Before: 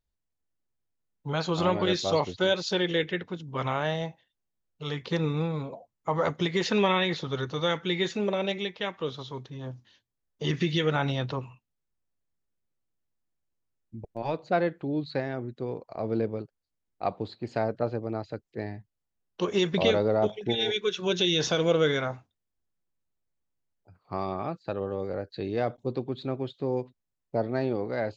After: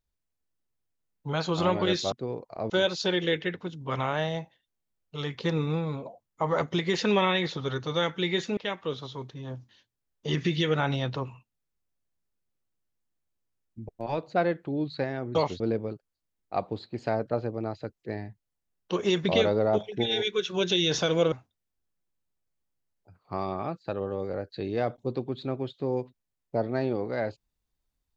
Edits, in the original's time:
2.12–2.37 swap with 15.51–16.09
8.24–8.73 cut
21.81–22.12 cut

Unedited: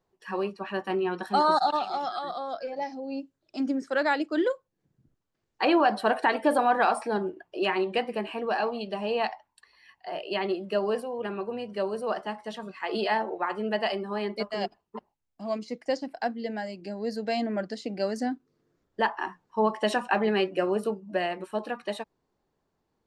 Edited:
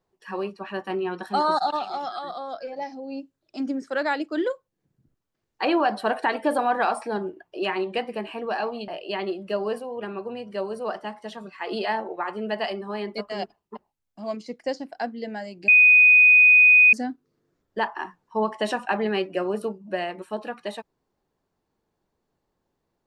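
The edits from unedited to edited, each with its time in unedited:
8.88–10.1 cut
16.9–18.15 bleep 2490 Hz -10.5 dBFS

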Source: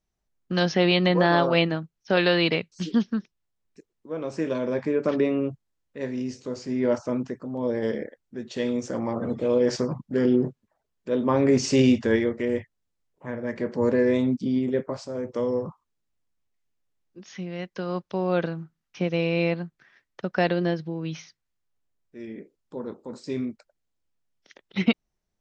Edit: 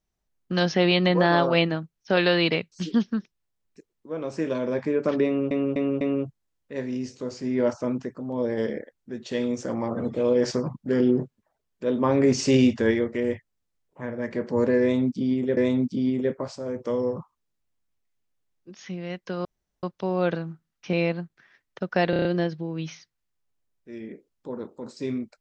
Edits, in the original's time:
5.26–5.51 loop, 4 plays
14.06–14.82 loop, 2 plays
17.94 insert room tone 0.38 s
19.04–19.35 cut
20.52 stutter 0.03 s, 6 plays

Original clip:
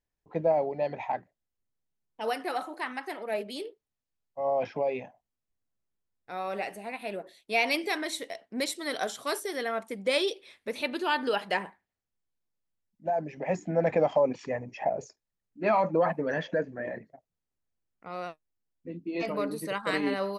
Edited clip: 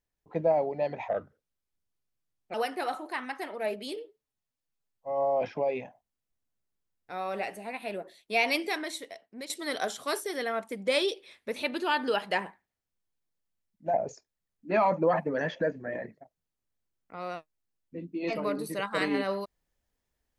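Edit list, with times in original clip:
1.08–2.22 speed 78%
3.64–4.61 stretch 1.5×
7.74–8.69 fade out, to -12.5 dB
13.13–14.86 cut

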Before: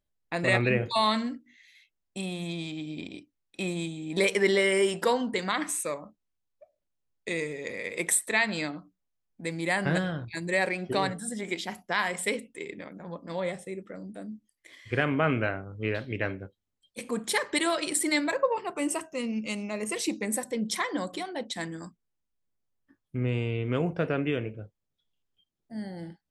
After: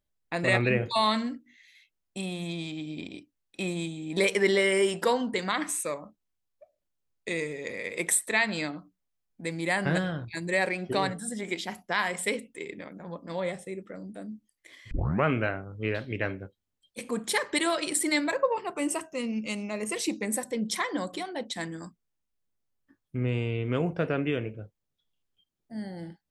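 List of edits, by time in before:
14.91 tape start 0.34 s

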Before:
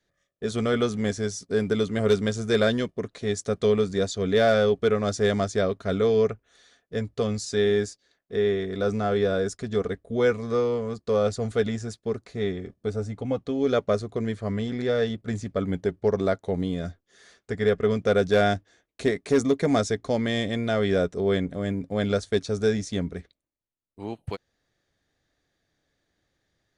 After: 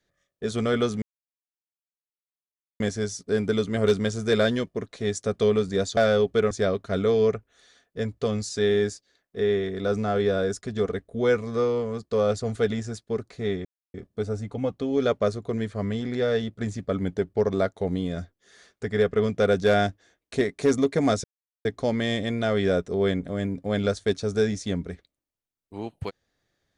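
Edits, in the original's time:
1.02 insert silence 1.78 s
4.19–4.45 cut
4.99–5.47 cut
12.61 insert silence 0.29 s
19.91 insert silence 0.41 s

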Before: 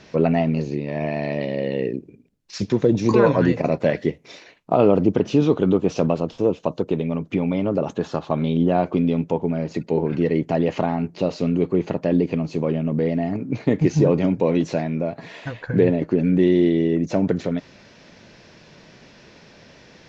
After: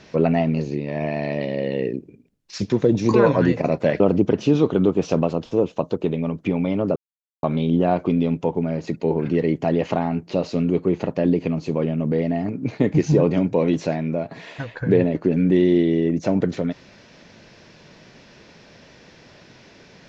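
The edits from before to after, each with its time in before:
4–4.87 cut
7.83–8.3 mute

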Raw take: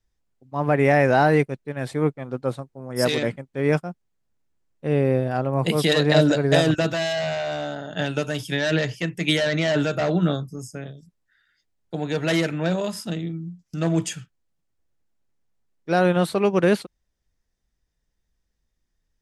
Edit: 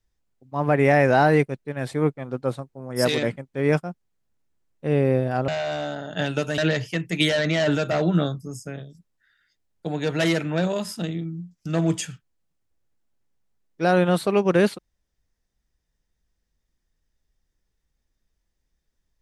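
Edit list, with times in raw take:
5.48–7.28 cut
8.38–8.66 cut

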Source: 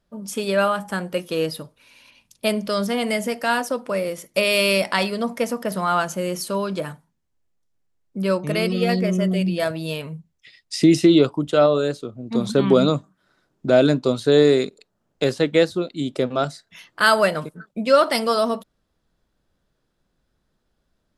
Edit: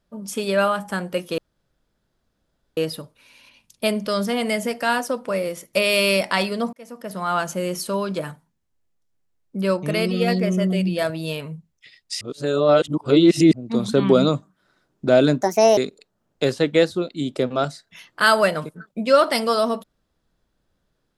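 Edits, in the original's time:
1.38 insert room tone 1.39 s
5.34–6.11 fade in
10.82–12.14 reverse
14.02–14.57 speed 152%

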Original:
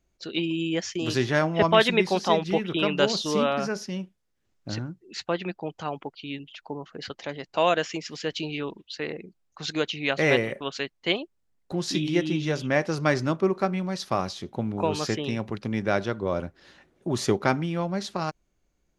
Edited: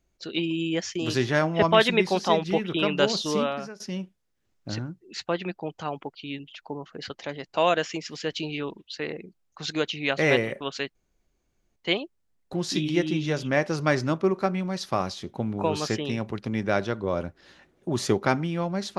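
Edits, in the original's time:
3.31–3.8 fade out linear, to -19.5 dB
10.95 insert room tone 0.81 s

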